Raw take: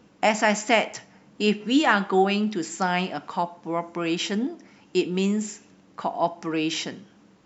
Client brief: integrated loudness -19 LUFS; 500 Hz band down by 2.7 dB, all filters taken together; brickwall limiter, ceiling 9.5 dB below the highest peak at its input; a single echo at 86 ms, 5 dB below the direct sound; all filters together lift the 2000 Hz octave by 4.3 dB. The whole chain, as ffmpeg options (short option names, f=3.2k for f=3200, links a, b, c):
-af "equalizer=f=500:t=o:g=-4.5,equalizer=f=2k:t=o:g=5.5,alimiter=limit=-13dB:level=0:latency=1,aecho=1:1:86:0.562,volume=6.5dB"